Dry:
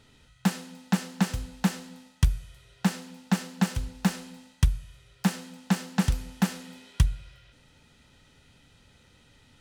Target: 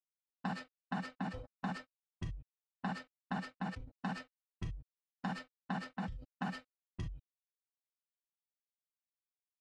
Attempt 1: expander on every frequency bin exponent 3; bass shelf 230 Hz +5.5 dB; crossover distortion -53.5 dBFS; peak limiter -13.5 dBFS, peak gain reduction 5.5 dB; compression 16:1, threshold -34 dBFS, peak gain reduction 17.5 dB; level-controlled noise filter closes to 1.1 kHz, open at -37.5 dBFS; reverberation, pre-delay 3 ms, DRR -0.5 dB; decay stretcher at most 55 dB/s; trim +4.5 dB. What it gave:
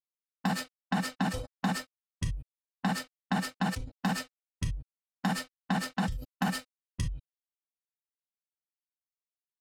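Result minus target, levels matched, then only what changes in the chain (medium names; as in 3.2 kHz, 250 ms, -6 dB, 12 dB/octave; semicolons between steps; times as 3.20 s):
compression: peak gain reduction -10 dB
change: compression 16:1, threshold -44.5 dBFS, peak gain reduction 27.5 dB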